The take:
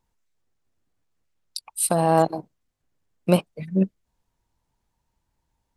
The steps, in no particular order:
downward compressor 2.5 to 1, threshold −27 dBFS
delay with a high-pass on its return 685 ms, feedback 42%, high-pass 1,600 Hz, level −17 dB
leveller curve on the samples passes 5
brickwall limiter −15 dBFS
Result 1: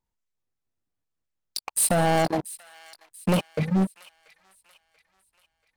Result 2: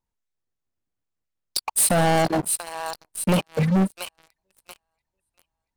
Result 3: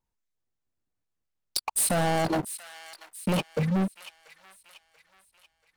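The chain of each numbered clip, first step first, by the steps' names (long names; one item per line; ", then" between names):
leveller curve on the samples, then downward compressor, then delay with a high-pass on its return, then brickwall limiter
delay with a high-pass on its return, then downward compressor, then brickwall limiter, then leveller curve on the samples
brickwall limiter, then leveller curve on the samples, then delay with a high-pass on its return, then downward compressor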